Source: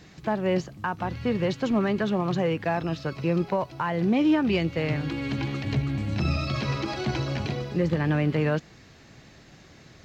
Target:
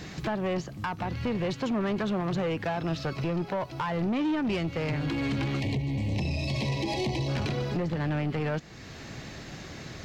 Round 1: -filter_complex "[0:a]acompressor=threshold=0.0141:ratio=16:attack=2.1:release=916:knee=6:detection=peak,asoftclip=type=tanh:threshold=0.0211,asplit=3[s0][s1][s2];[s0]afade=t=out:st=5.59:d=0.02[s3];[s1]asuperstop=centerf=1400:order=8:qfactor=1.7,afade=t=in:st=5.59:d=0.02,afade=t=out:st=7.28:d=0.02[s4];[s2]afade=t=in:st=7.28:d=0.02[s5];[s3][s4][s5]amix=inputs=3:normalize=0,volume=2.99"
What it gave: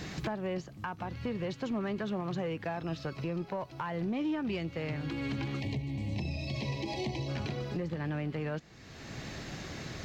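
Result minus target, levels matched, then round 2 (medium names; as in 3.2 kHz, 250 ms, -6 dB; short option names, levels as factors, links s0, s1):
compression: peak gain reduction +8.5 dB
-filter_complex "[0:a]acompressor=threshold=0.0398:ratio=16:attack=2.1:release=916:knee=6:detection=peak,asoftclip=type=tanh:threshold=0.0211,asplit=3[s0][s1][s2];[s0]afade=t=out:st=5.59:d=0.02[s3];[s1]asuperstop=centerf=1400:order=8:qfactor=1.7,afade=t=in:st=5.59:d=0.02,afade=t=out:st=7.28:d=0.02[s4];[s2]afade=t=in:st=7.28:d=0.02[s5];[s3][s4][s5]amix=inputs=3:normalize=0,volume=2.99"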